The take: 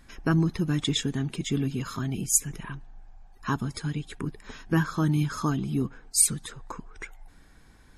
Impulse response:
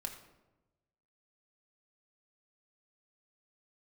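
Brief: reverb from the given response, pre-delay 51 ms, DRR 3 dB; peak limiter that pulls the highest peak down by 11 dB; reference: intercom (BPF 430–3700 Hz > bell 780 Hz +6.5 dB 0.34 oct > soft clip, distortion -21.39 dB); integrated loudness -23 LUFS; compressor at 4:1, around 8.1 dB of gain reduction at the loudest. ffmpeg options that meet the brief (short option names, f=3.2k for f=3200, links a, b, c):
-filter_complex "[0:a]acompressor=threshold=-26dB:ratio=4,alimiter=level_in=1.5dB:limit=-24dB:level=0:latency=1,volume=-1.5dB,asplit=2[a][b];[1:a]atrim=start_sample=2205,adelay=51[c];[b][c]afir=irnorm=-1:irlink=0,volume=-1.5dB[d];[a][d]amix=inputs=2:normalize=0,highpass=430,lowpass=3.7k,equalizer=f=780:t=o:w=0.34:g=6.5,asoftclip=threshold=-29dB,volume=19dB"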